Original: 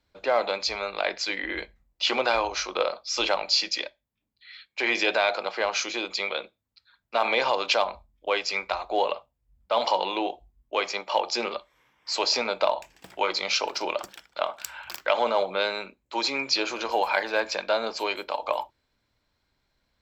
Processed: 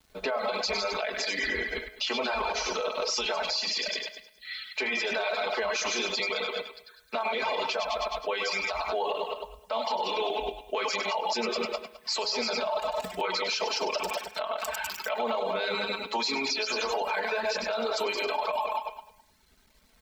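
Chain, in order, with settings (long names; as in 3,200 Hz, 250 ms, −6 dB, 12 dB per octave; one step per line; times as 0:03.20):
feedback delay that plays each chunk backwards 105 ms, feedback 44%, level −4 dB
low-shelf EQ 430 Hz +3 dB
comb filter 4.6 ms, depth 91%
feedback echo with a high-pass in the loop 98 ms, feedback 31%, high-pass 420 Hz, level −7 dB
downward compressor 6 to 1, threshold −25 dBFS, peak gain reduction 11.5 dB
bit reduction 11 bits
reverb reduction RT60 0.69 s
hum removal 105.2 Hz, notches 32
brickwall limiter −25 dBFS, peak gain reduction 12 dB
level +4.5 dB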